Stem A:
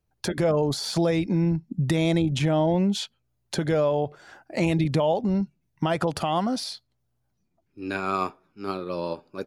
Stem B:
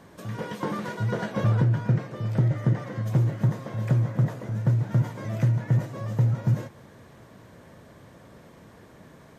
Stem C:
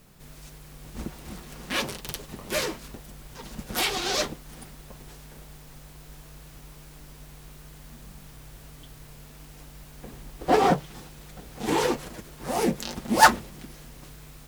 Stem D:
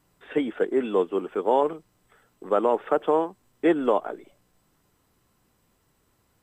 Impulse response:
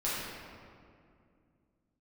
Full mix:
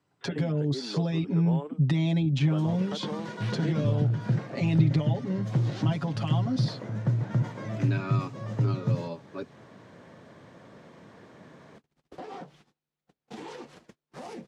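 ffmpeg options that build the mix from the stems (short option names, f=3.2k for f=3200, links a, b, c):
-filter_complex "[0:a]lowpass=f=2.6k:p=1,aecho=1:1:7.2:0.97,volume=-1.5dB,asplit=2[a][b];[1:a]adelay=2400,volume=0dB[c];[2:a]agate=range=-36dB:threshold=-38dB:ratio=16:detection=peak,acompressor=threshold=-22dB:ratio=6,alimiter=level_in=1dB:limit=-24dB:level=0:latency=1:release=418,volume=-1dB,adelay=1700,volume=-6dB[d];[3:a]volume=-7dB[e];[b]apad=whole_len=713377[f];[d][f]sidechaincompress=threshold=-42dB:ratio=8:attack=16:release=300[g];[a][c][g][e]amix=inputs=4:normalize=0,highpass=130,lowpass=5.7k,acrossover=split=250|3000[h][i][j];[i]acompressor=threshold=-36dB:ratio=5[k];[h][k][j]amix=inputs=3:normalize=0"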